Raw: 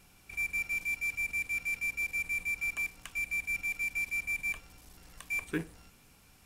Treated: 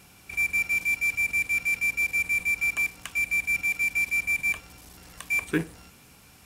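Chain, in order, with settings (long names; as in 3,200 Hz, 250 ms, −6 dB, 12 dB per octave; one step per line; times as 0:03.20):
high-pass filter 61 Hz
level +8 dB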